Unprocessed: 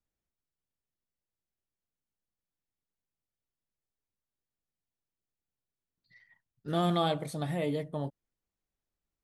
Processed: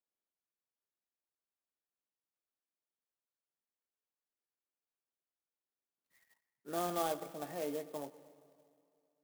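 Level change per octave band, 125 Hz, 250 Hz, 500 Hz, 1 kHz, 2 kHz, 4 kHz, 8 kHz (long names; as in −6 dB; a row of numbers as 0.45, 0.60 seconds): −19.5, −10.5, −5.5, −5.5, −7.0, −11.0, +3.0 decibels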